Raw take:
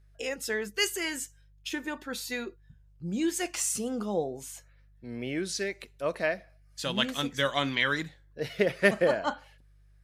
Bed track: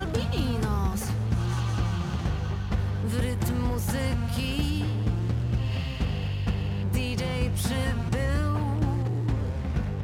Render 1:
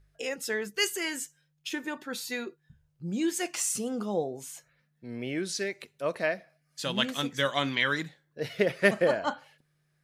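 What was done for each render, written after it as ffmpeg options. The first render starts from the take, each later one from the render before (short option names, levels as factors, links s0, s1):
-af "bandreject=f=50:t=h:w=4,bandreject=f=100:t=h:w=4"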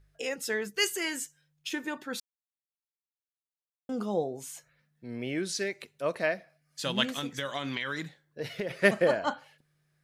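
-filter_complex "[0:a]asettb=1/sr,asplit=3[s0][s1][s2];[s0]atrim=end=7.064[s3];[s1]atrim=start=7.06:end=8.71,asetpts=PTS-STARTPTS,afade=t=in:d=0.004:c=qsin,afade=t=out:st=1.646:d=0.004:c=qsin,acompressor=threshold=0.0355:ratio=6:attack=3.2:release=140:knee=1:detection=peak[s4];[s2]atrim=start=8.706[s5];[s3][s4]acrossfade=d=0.004:c1=hsin:c2=qsin[s6];[s6][s5]acrossfade=d=0.004:c1=qsin:c2=hsin,asplit=3[s7][s8][s9];[s7]atrim=end=2.2,asetpts=PTS-STARTPTS,afade=t=out:st=2.196:d=0.004:c=hsin[s10];[s8]atrim=start=2.2:end=3.89,asetpts=PTS-STARTPTS,volume=0[s11];[s9]atrim=start=3.89,asetpts=PTS-STARTPTS,afade=t=in:d=0.004:c=hsin[s12];[s10][s11][s12]concat=n=3:v=0:a=1"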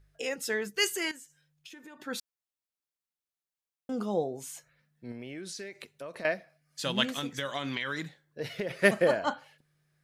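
-filter_complex "[0:a]asettb=1/sr,asplit=3[s0][s1][s2];[s0]atrim=end=1.114[s3];[s1]atrim=start=1.11:end=2,asetpts=PTS-STARTPTS,afade=t=in:d=0.004:c=qsin,afade=t=out:st=0.886:d=0.004:c=qsin,acompressor=threshold=0.00501:ratio=8:attack=3.2:release=140:knee=1:detection=peak[s4];[s2]atrim=start=1.996[s5];[s3][s4]acrossfade=d=0.004:c1=hsin:c2=qsin[s6];[s6][s5]acrossfade=d=0.004:c1=qsin:c2=hsin,asettb=1/sr,asplit=3[s7][s8][s9];[s7]atrim=end=5.114[s10];[s8]atrim=start=5.11:end=6.25,asetpts=PTS-STARTPTS,afade=t=in:d=0.004:c=qsin,afade=t=out:st=1.136:d=0.004:c=qsin,acompressor=threshold=0.0141:ratio=10:attack=3.2:release=140:knee=1:detection=peak[s11];[s9]atrim=start=6.246[s12];[s10][s11]acrossfade=d=0.004:c1=hsin:c2=qsin[s13];[s13][s12]acrossfade=d=0.004:c1=qsin:c2=hsin,asettb=1/sr,asplit=3[s14][s15][s16];[s14]atrim=end=8.794[s17];[s15]atrim=start=8.79:end=9.28,asetpts=PTS-STARTPTS,afade=t=in:d=0.004:c=qsin,afade=t=out:st=0.486:d=0.004:c=qsin,equalizer=f=12000:w=1.5:g=5.5[s18];[s16]atrim=start=9.276[s19];[s17][s18]acrossfade=d=0.004:c1=hsin:c2=qsin[s20];[s20][s19]acrossfade=d=0.004:c1=qsin:c2=hsin"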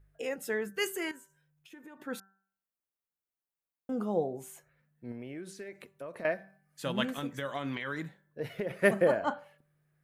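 -af "equalizer=f=4900:t=o:w=1.7:g=-13,bandreject=f=193.9:t=h:w=4,bandreject=f=387.8:t=h:w=4,bandreject=f=581.7:t=h:w=4,bandreject=f=775.6:t=h:w=4,bandreject=f=969.5:t=h:w=4,bandreject=f=1163.4:t=h:w=4,bandreject=f=1357.3:t=h:w=4,bandreject=f=1551.2:t=h:w=4,bandreject=f=1745.1:t=h:w=4"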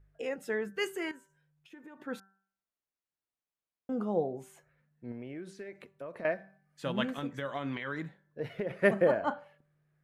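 -af "aemphasis=mode=reproduction:type=50kf"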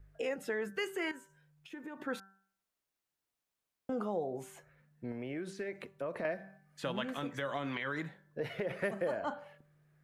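-filter_complex "[0:a]acrossover=split=460|4400[s0][s1][s2];[s0]acompressor=threshold=0.00562:ratio=4[s3];[s1]acompressor=threshold=0.0112:ratio=4[s4];[s2]acompressor=threshold=0.00112:ratio=4[s5];[s3][s4][s5]amix=inputs=3:normalize=0,asplit=2[s6][s7];[s7]alimiter=level_in=3.55:limit=0.0631:level=0:latency=1,volume=0.282,volume=0.841[s8];[s6][s8]amix=inputs=2:normalize=0"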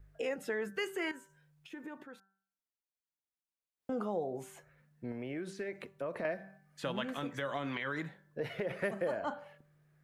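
-filter_complex "[0:a]asplit=3[s0][s1][s2];[s0]atrim=end=2.08,asetpts=PTS-STARTPTS,afade=t=out:st=1.93:d=0.15:silence=0.199526[s3];[s1]atrim=start=2.08:end=3.75,asetpts=PTS-STARTPTS,volume=0.2[s4];[s2]atrim=start=3.75,asetpts=PTS-STARTPTS,afade=t=in:d=0.15:silence=0.199526[s5];[s3][s4][s5]concat=n=3:v=0:a=1"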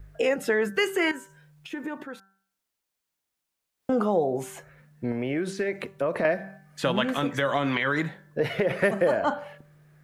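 -af "volume=3.98"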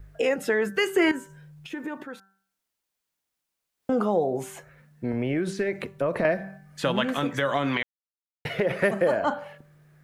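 -filter_complex "[0:a]asettb=1/sr,asplit=3[s0][s1][s2];[s0]atrim=end=0.964[s3];[s1]atrim=start=0.96:end=1.73,asetpts=PTS-STARTPTS,afade=t=in:d=0.004:c=qsin,afade=t=out:st=0.766:d=0.004:c=qsin,lowshelf=f=390:g=9.5[s4];[s2]atrim=start=1.726[s5];[s3][s4]acrossfade=d=0.004:c1=hsin:c2=qsin[s6];[s6][s5]acrossfade=d=0.004:c1=qsin:c2=hsin,asettb=1/sr,asplit=3[s7][s8][s9];[s7]atrim=end=5.134[s10];[s8]atrim=start=5.13:end=6.82,asetpts=PTS-STARTPTS,afade=t=in:d=0.004:c=qsin,afade=t=out:st=1.686:d=0.004:c=qsin,lowshelf=f=130:g=10[s11];[s9]atrim=start=6.816[s12];[s10][s11]acrossfade=d=0.004:c1=hsin:c2=qsin[s13];[s13][s12]acrossfade=d=0.004:c1=qsin:c2=hsin,asplit=3[s14][s15][s16];[s14]atrim=end=7.83,asetpts=PTS-STARTPTS,afade=t=out:st=7.826:d=0.004:c=hsin[s17];[s15]atrim=start=7.83:end=8.45,asetpts=PTS-STARTPTS,volume=0[s18];[s16]atrim=start=8.45,asetpts=PTS-STARTPTS,afade=t=in:d=0.004:c=hsin[s19];[s17][s18][s19]concat=n=3:v=0:a=1"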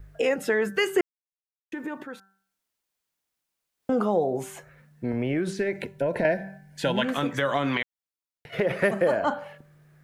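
-filter_complex "[0:a]asettb=1/sr,asplit=3[s0][s1][s2];[s0]atrim=end=5.554[s3];[s1]atrim=start=5.55:end=7.03,asetpts=PTS-STARTPTS,afade=t=in:d=0.004:c=qsin,afade=t=out:st=1.476:d=0.004:c=qsin,asuperstop=centerf=1200:order=20:qfactor=4.1[s4];[s2]atrim=start=7.026[s5];[s3][s4]acrossfade=d=0.004:c1=hsin:c2=qsin[s6];[s6][s5]acrossfade=d=0.004:c1=qsin:c2=hsin,asplit=3[s7][s8][s9];[s7]afade=t=out:st=7.82:d=0.02[s10];[s8]acompressor=threshold=0.00562:ratio=6:attack=3.2:release=140:knee=1:detection=peak,afade=t=in:st=7.82:d=0.02,afade=t=out:st=8.52:d=0.02[s11];[s9]afade=t=in:st=8.52:d=0.02[s12];[s10][s11][s12]amix=inputs=3:normalize=0,asplit=3[s13][s14][s15];[s13]atrim=end=1.01,asetpts=PTS-STARTPTS,afade=t=out:st=1.006:d=0.004:c=hsin[s16];[s14]atrim=start=1.01:end=1.72,asetpts=PTS-STARTPTS,volume=0[s17];[s15]atrim=start=1.72,asetpts=PTS-STARTPTS,afade=t=in:d=0.004:c=hsin[s18];[s16][s17][s18]concat=n=3:v=0:a=1"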